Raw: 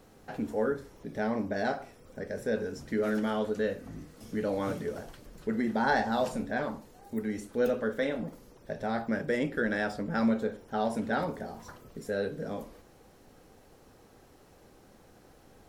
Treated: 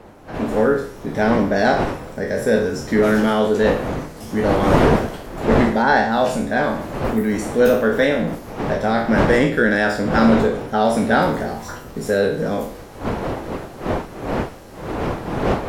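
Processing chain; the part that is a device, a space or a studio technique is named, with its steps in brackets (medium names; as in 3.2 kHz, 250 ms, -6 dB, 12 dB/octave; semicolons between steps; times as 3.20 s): spectral sustain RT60 0.54 s; 5.82–6.30 s: tone controls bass -1 dB, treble -6 dB; smartphone video outdoors (wind noise 630 Hz -36 dBFS; level rider gain up to 13 dB; AAC 64 kbps 44.1 kHz)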